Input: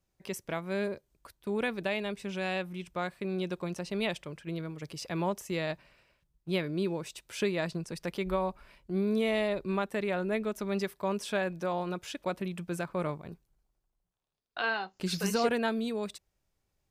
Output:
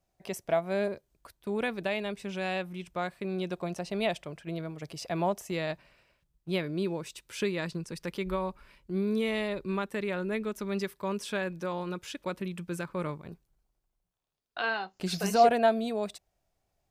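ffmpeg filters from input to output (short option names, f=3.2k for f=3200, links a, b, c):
-af "asetnsamples=n=441:p=0,asendcmd='0.88 equalizer g 3;3.53 equalizer g 9.5;5.51 equalizer g 1.5;7.01 equalizer g -8.5;13.26 equalizer g 1.5;15.02 equalizer g 13.5',equalizer=f=690:t=o:w=0.35:g=14"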